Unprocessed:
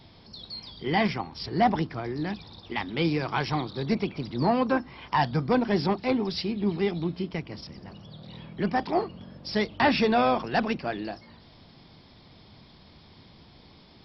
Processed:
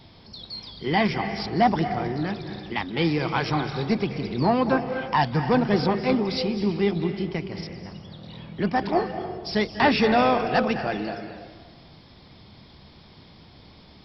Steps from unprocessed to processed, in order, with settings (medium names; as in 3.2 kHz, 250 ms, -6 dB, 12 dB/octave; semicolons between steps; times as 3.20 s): on a send: graphic EQ with 31 bands 250 Hz -11 dB, 1 kHz -8 dB, 4 kHz -9 dB + reverberation RT60 1.4 s, pre-delay 190 ms, DRR 7 dB; on the sum: trim +2.5 dB